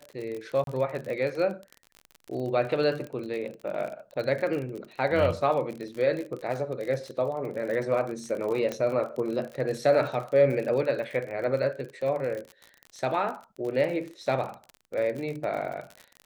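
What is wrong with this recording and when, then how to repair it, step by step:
crackle 41 per s -33 dBFS
0.64–0.67 s: dropout 32 ms
8.72 s: pop -17 dBFS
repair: de-click; interpolate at 0.64 s, 32 ms

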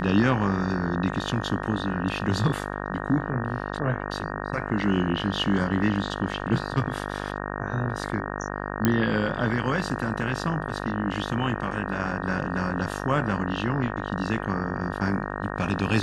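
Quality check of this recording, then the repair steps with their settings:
buzz 50 Hz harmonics 37 -32 dBFS
8.85 s: pop -7 dBFS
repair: de-click; de-hum 50 Hz, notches 37

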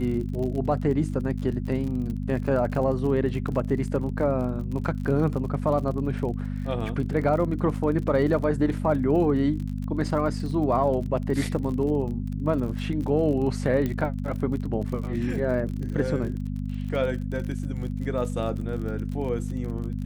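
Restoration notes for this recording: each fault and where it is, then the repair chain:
crackle 42 per s -33 dBFS
hum 50 Hz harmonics 5 -30 dBFS
13.86 s: pop -16 dBFS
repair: de-click; de-hum 50 Hz, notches 5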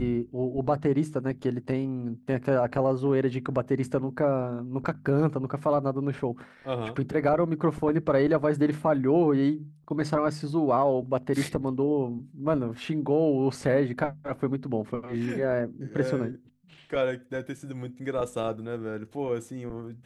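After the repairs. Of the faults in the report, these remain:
nothing left

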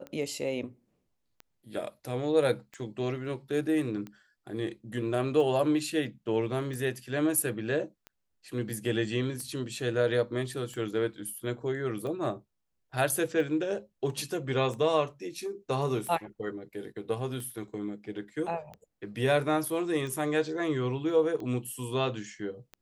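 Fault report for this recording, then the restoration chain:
tick 45 rpm -28 dBFS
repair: de-click

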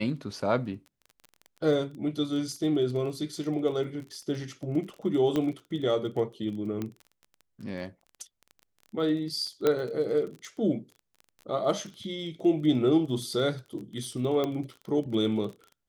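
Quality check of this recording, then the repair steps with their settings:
crackle 22 per s -37 dBFS
5.36 s: pop -16 dBFS
6.82 s: pop -20 dBFS
9.67 s: pop -12 dBFS
14.44 s: pop -17 dBFS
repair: de-click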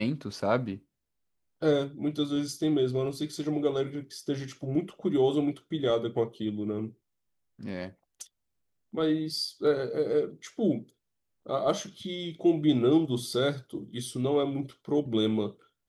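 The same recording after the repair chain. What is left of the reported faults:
9.67 s: pop

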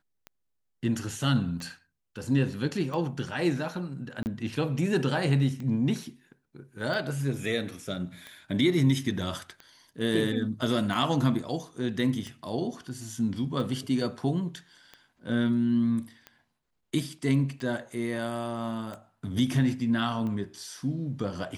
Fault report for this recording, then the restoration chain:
tick 45 rpm -26 dBFS
4.23–4.26 s: dropout 29 ms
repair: de-click; interpolate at 4.23 s, 29 ms

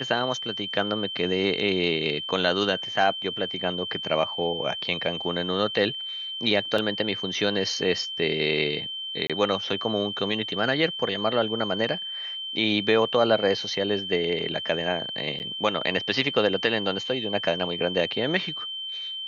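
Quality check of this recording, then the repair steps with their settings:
whine 3.1 kHz -31 dBFS
6.78 s: dropout 3.8 ms
9.27–9.30 s: dropout 26 ms
15.39–15.40 s: dropout 9.7 ms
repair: band-stop 3.1 kHz, Q 30; interpolate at 6.78 s, 3.8 ms; interpolate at 9.27 s, 26 ms; interpolate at 15.39 s, 9.7 ms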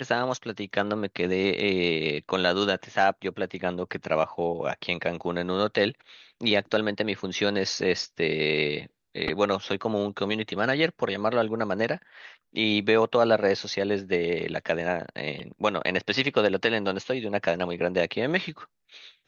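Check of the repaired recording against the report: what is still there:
nothing left

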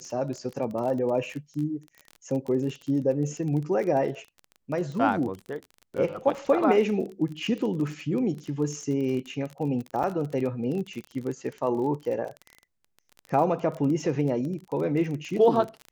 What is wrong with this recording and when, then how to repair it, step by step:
crackle 28 per s -32 dBFS
10.03–10.04 s: dropout 6.1 ms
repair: de-click; interpolate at 10.03 s, 6.1 ms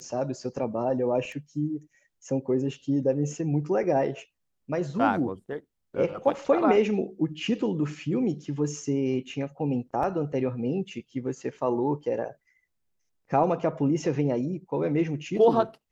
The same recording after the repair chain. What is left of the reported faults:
nothing left

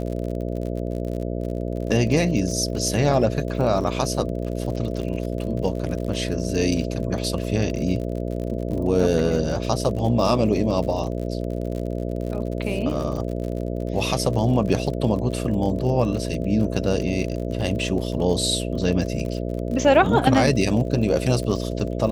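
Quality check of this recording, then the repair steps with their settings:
buzz 60 Hz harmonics 11 -27 dBFS
crackle 52 per s -30 dBFS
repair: de-click; de-hum 60 Hz, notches 11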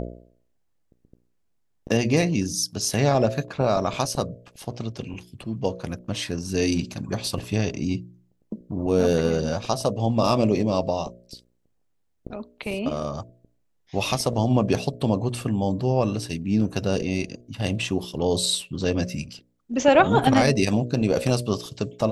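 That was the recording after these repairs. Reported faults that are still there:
nothing left

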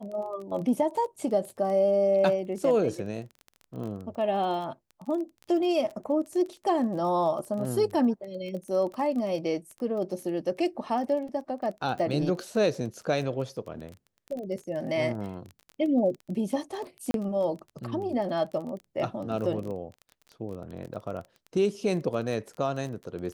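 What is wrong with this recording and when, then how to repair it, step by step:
crackle 22 per s -35 dBFS
17.11–17.14 s: dropout 32 ms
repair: de-click; interpolate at 17.11 s, 32 ms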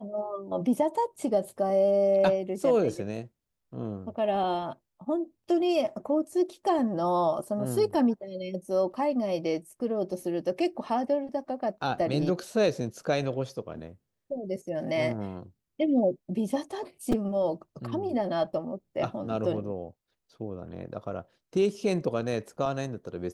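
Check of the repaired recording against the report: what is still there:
nothing left

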